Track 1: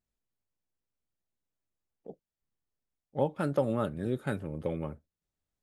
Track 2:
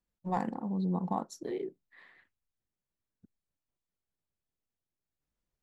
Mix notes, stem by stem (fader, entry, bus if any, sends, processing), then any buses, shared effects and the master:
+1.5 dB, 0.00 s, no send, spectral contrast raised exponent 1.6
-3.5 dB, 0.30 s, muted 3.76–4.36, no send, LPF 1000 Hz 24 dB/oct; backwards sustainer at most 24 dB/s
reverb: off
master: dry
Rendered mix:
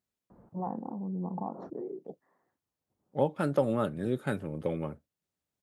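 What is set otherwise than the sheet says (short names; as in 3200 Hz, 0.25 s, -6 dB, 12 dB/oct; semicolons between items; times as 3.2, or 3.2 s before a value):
stem 1: missing spectral contrast raised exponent 1.6; master: extra HPF 110 Hz 12 dB/oct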